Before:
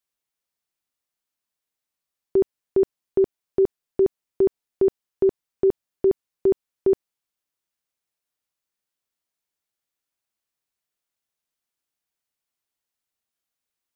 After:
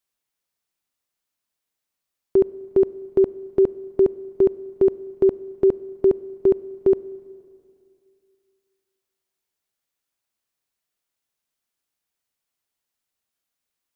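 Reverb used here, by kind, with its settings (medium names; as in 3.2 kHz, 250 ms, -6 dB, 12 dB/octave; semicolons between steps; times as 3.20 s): Schroeder reverb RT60 2.4 s, combs from 32 ms, DRR 18.5 dB; trim +2.5 dB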